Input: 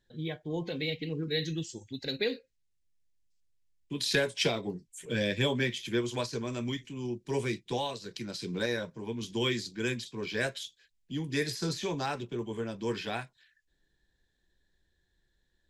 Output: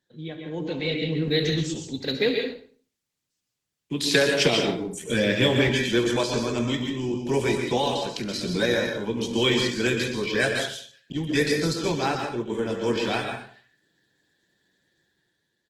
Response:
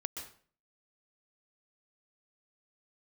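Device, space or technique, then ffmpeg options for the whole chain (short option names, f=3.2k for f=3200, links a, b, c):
far-field microphone of a smart speaker: -filter_complex "[0:a]aecho=1:1:69|138|207:0.2|0.0459|0.0106,asettb=1/sr,asplit=3[a][b][c];[a]atrim=end=11.124[d];[b]atrim=start=11.12:end=12.5,asetpts=PTS-STARTPTS,afade=t=in:d=0.004:c=qsin,afade=t=out:st=1.376:d=0.004:c=qsin,agate=range=-33dB:threshold=-30dB:ratio=3:detection=peak[e];[c]atrim=start=12.496[f];[d][e]acrossfade=d=0.004:c1=hsin:c2=qsin[g];[g][f]acrossfade=d=0.004:c1=qsin:c2=hsin[h];[1:a]atrim=start_sample=2205[i];[h][i]afir=irnorm=-1:irlink=0,highpass=f=120:w=0.5412,highpass=f=120:w=1.3066,dynaudnorm=f=120:g=13:m=8dB,volume=1.5dB" -ar 48000 -c:a libopus -b:a 16k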